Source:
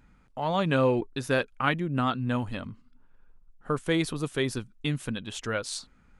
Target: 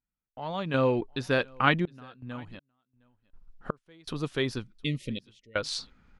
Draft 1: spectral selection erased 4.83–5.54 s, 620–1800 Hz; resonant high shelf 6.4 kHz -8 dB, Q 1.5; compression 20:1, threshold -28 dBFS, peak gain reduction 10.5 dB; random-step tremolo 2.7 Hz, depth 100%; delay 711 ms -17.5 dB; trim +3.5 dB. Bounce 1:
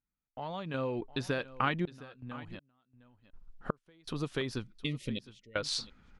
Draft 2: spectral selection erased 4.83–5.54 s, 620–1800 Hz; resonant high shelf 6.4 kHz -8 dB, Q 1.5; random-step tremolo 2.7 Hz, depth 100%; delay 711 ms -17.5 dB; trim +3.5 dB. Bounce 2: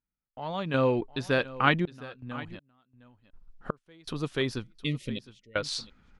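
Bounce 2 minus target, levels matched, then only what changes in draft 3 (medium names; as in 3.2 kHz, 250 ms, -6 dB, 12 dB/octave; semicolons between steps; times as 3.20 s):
echo-to-direct +9.5 dB
change: delay 711 ms -27 dB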